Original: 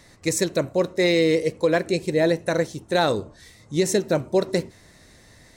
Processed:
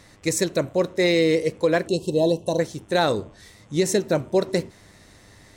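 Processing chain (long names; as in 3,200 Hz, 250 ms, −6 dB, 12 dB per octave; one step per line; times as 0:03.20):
hum with harmonics 100 Hz, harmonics 36, −58 dBFS −4 dB per octave
gain on a spectral selection 0:01.88–0:02.60, 1,100–2,600 Hz −29 dB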